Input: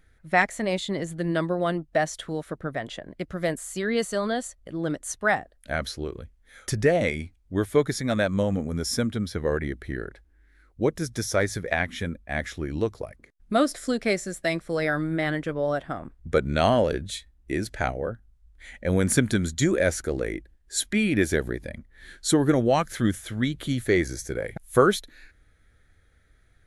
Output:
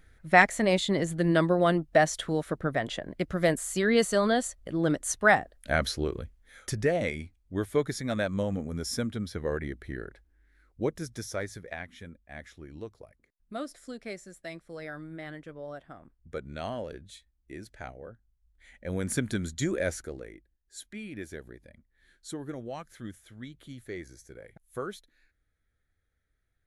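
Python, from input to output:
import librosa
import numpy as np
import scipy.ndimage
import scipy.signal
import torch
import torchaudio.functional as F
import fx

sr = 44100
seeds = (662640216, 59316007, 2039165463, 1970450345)

y = fx.gain(x, sr, db=fx.line((6.21, 2.0), (6.77, -5.5), (10.82, -5.5), (11.91, -15.0), (18.06, -15.0), (19.37, -7.0), (19.94, -7.0), (20.34, -17.5)))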